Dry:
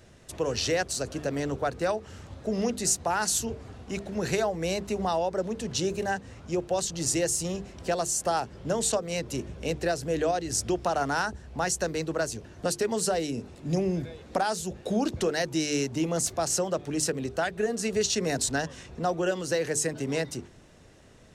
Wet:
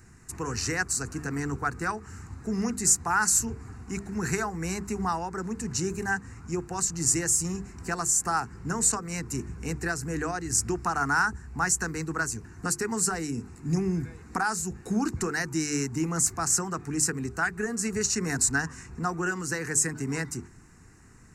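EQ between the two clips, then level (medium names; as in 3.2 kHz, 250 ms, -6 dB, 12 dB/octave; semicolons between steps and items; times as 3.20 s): peaking EQ 7.4 kHz +7 dB 0.27 oct; dynamic bell 1.3 kHz, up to +4 dB, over -41 dBFS, Q 1.7; static phaser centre 1.4 kHz, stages 4; +3.0 dB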